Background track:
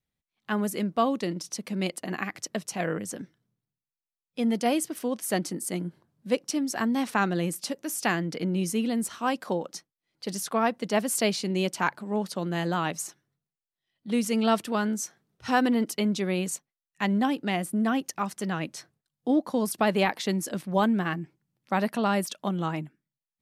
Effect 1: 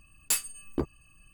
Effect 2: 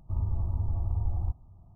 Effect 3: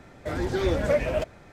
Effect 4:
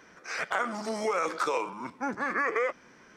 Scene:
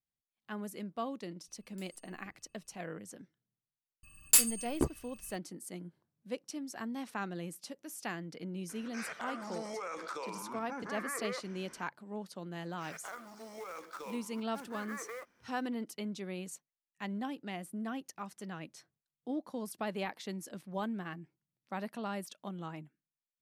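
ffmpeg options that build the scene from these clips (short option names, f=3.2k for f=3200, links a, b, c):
-filter_complex "[1:a]asplit=2[a][b];[4:a]asplit=2[c][d];[0:a]volume=-13.5dB[e];[a]acompressor=threshold=-39dB:ratio=6:attack=3.2:release=140:knee=1:detection=peak[f];[b]highshelf=f=4.4k:g=6.5[g];[c]acompressor=threshold=-41dB:ratio=2.5:attack=2.4:release=93:knee=1:detection=peak[h];[d]acrusher=bits=3:mode=log:mix=0:aa=0.000001[i];[f]atrim=end=1.33,asetpts=PTS-STARTPTS,volume=-18dB,afade=t=in:d=0.004:c=hsin,afade=t=out:st=1.326:d=0.004:c=hsin,adelay=1480[j];[g]atrim=end=1.33,asetpts=PTS-STARTPTS,volume=-1dB,afade=t=in:d=0.004:c=hsin,afade=t=out:st=1.326:d=0.004:c=hsin,adelay=4030[k];[h]atrim=end=3.16,asetpts=PTS-STARTPTS,volume=-1.5dB,afade=t=in:d=0.004:c=hsin,afade=t=out:st=3.156:d=0.004:c=hsin,adelay=8690[l];[i]atrim=end=3.16,asetpts=PTS-STARTPTS,volume=-16.5dB,afade=t=in:d=0.004:c=hsin,afade=t=out:st=3.156:d=0.004:c=hsin,adelay=12530[m];[e][j][k][l][m]amix=inputs=5:normalize=0"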